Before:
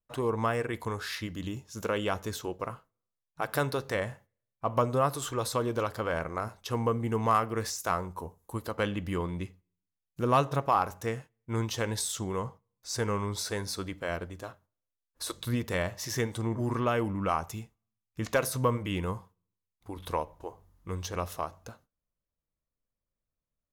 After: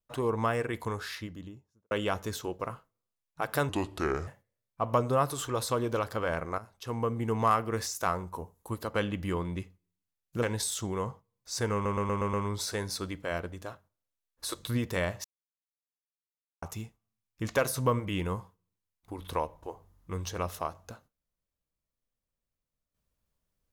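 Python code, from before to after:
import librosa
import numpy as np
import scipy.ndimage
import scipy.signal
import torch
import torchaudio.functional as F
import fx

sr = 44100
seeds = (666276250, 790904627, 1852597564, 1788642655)

y = fx.studio_fade_out(x, sr, start_s=0.87, length_s=1.04)
y = fx.edit(y, sr, fx.speed_span(start_s=3.69, length_s=0.42, speed=0.72),
    fx.fade_in_from(start_s=6.42, length_s=0.98, curve='qsin', floor_db=-12.5),
    fx.cut(start_s=10.26, length_s=1.54),
    fx.stutter(start_s=13.11, slice_s=0.12, count=6),
    fx.silence(start_s=16.02, length_s=1.38), tone=tone)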